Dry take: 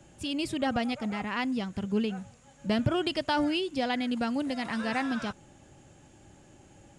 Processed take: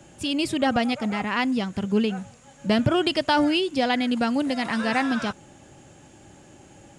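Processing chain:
low-shelf EQ 80 Hz −8.5 dB
level +7 dB

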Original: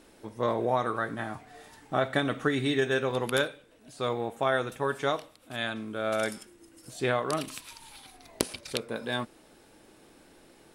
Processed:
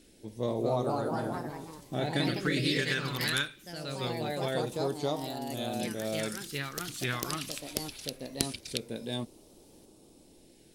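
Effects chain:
all-pass phaser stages 2, 0.23 Hz, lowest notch 520–1,700 Hz
delay with pitch and tempo change per echo 278 ms, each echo +2 semitones, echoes 3

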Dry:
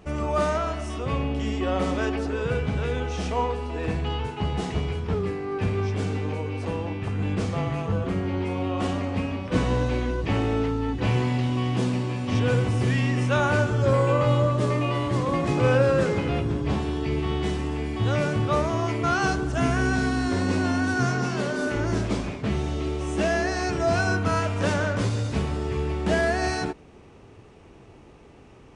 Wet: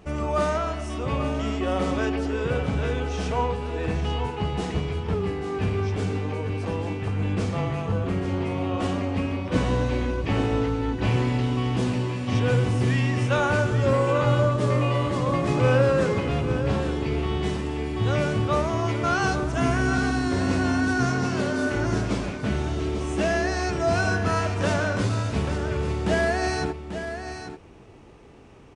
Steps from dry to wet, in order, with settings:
single-tap delay 840 ms −9.5 dB

